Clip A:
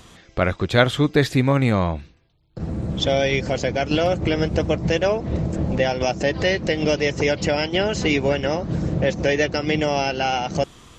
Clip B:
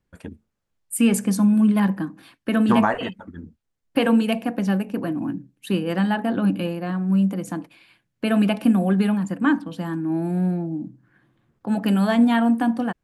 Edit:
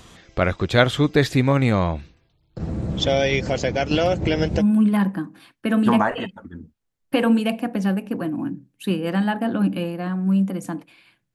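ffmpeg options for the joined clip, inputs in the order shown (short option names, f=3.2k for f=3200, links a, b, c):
-filter_complex "[0:a]asettb=1/sr,asplit=3[a][b][c];[a]atrim=end=4.124[d];[b]atrim=start=4.12:end=4.65,asetpts=PTS-STARTPTS,afade=t=in:d=0.004:c=qsin,afade=t=out:st=0.526:d=0.004:c=qsin,bandreject=f=1.2k:w=6.6[e];[c]atrim=start=4.646[f];[d][e]acrossfade=d=0.004:c1=hsin:c2=qsin[g];[g][f]acrossfade=d=0.004:c1=qsin:c2=hsin,apad=whole_dur=11.34,atrim=end=11.34,atrim=end=4.65,asetpts=PTS-STARTPTS[h];[1:a]atrim=start=1.4:end=8.17,asetpts=PTS-STARTPTS[i];[h][i]acrossfade=d=0.08:c1=tri:c2=tri"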